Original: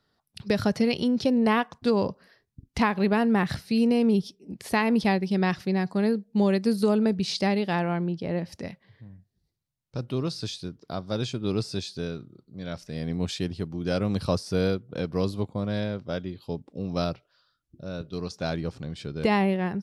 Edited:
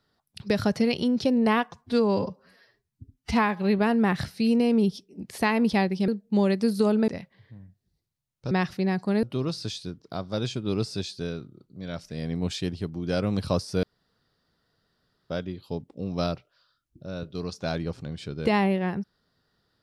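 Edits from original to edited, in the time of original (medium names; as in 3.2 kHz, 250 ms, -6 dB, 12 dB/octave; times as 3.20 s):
1.72–3.10 s: stretch 1.5×
5.39–6.11 s: move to 10.01 s
7.11–8.58 s: delete
14.61–16.08 s: room tone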